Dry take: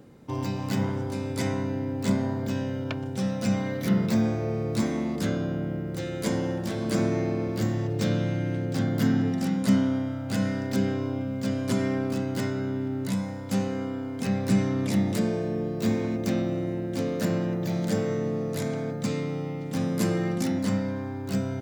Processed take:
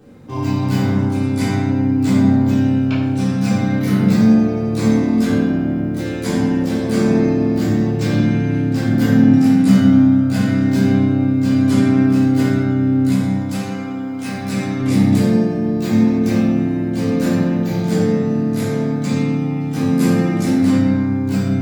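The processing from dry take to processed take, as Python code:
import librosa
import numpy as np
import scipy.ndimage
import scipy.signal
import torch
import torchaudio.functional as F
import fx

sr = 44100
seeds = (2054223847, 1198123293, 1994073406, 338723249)

y = fx.low_shelf(x, sr, hz=390.0, db=-11.5, at=(13.49, 14.8))
y = fx.room_shoebox(y, sr, seeds[0], volume_m3=380.0, walls='mixed', distance_m=3.6)
y = y * 10.0 ** (-1.5 / 20.0)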